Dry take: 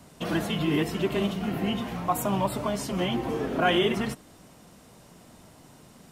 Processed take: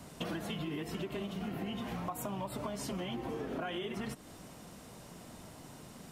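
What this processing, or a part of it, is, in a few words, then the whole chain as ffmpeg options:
serial compression, leveller first: -af "acompressor=threshold=-27dB:ratio=2.5,acompressor=threshold=-37dB:ratio=6,volume=1dB"

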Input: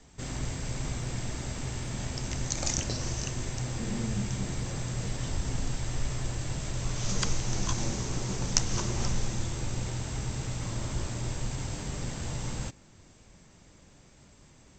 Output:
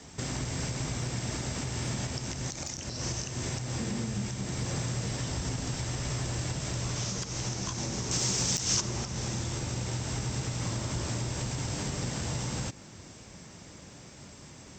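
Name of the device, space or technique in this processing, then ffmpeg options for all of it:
broadcast voice chain: -filter_complex "[0:a]highpass=76,deesser=0.45,acompressor=threshold=-38dB:ratio=4,equalizer=frequency=5400:width_type=o:width=0.24:gain=5,alimiter=level_in=7.5dB:limit=-24dB:level=0:latency=1:release=184,volume=-7.5dB,asettb=1/sr,asplit=3[link_01][link_02][link_03];[link_01]atrim=end=8.114[link_04];[link_02]atrim=start=8.11:end=8.81,asetpts=PTS-STARTPTS,afade=type=in:duration=0.004:curve=qsin,afade=type=out:start_time=0.696:duration=0.004:curve=qsin,highshelf=frequency=2500:gain=11.5[link_05];[link_03]atrim=start=8.806[link_06];[link_04][link_05]acrossfade=duration=0.004:curve1=hsin:curve2=qsin[link_07];[link_07][link_06]acrossfade=duration=0.004:curve1=qsin:curve2=hsin,volume=8.5dB"

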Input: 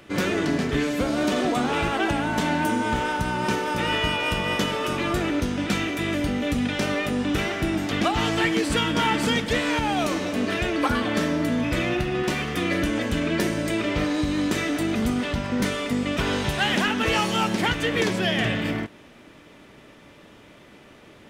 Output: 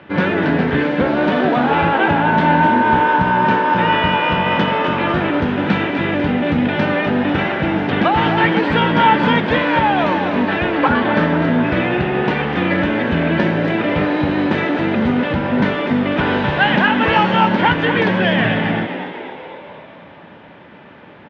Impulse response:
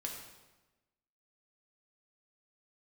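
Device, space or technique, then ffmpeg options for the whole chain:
frequency-shifting delay pedal into a guitar cabinet: -filter_complex "[0:a]asplit=8[link_01][link_02][link_03][link_04][link_05][link_06][link_07][link_08];[link_02]adelay=249,afreqshift=73,volume=-9dB[link_09];[link_03]adelay=498,afreqshift=146,volume=-13.6dB[link_10];[link_04]adelay=747,afreqshift=219,volume=-18.2dB[link_11];[link_05]adelay=996,afreqshift=292,volume=-22.7dB[link_12];[link_06]adelay=1245,afreqshift=365,volume=-27.3dB[link_13];[link_07]adelay=1494,afreqshift=438,volume=-31.9dB[link_14];[link_08]adelay=1743,afreqshift=511,volume=-36.5dB[link_15];[link_01][link_09][link_10][link_11][link_12][link_13][link_14][link_15]amix=inputs=8:normalize=0,highpass=81,equalizer=frequency=85:width_type=q:width=4:gain=5,equalizer=frequency=170:width_type=q:width=4:gain=8,equalizer=frequency=250:width_type=q:width=4:gain=3,equalizer=frequency=550:width_type=q:width=4:gain=4,equalizer=frequency=890:width_type=q:width=4:gain=9,equalizer=frequency=1600:width_type=q:width=4:gain=7,lowpass=frequency=3400:width=0.5412,lowpass=frequency=3400:width=1.3066,volume=4dB"

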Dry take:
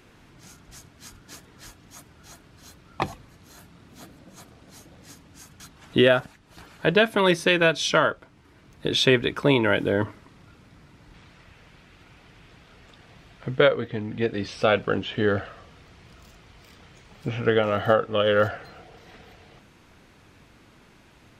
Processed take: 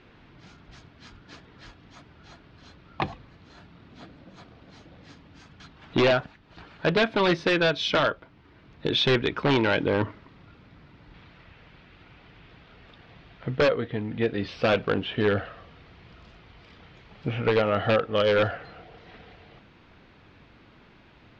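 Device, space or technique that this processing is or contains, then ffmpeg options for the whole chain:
synthesiser wavefolder: -af "aeval=exprs='0.188*(abs(mod(val(0)/0.188+3,4)-2)-1)':channel_layout=same,lowpass=frequency=4300:width=0.5412,lowpass=frequency=4300:width=1.3066"

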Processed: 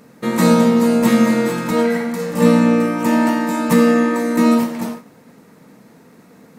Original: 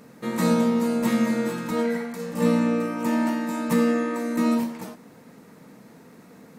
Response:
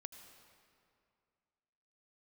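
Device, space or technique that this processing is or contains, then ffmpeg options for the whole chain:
keyed gated reverb: -filter_complex "[0:a]asplit=3[link_01][link_02][link_03];[1:a]atrim=start_sample=2205[link_04];[link_02][link_04]afir=irnorm=-1:irlink=0[link_05];[link_03]apad=whole_len=290539[link_06];[link_05][link_06]sidechaingate=range=-33dB:threshold=-43dB:ratio=16:detection=peak,volume=7dB[link_07];[link_01][link_07]amix=inputs=2:normalize=0,volume=2dB"

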